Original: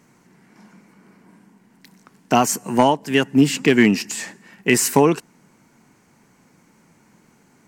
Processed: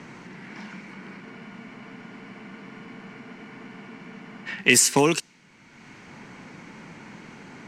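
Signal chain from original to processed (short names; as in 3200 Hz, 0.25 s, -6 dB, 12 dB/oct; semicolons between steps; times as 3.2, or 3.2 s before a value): low-pass opened by the level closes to 1700 Hz, open at -10.5 dBFS; spectral freeze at 1.23, 3.25 s; three-band squash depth 70%; gain +7.5 dB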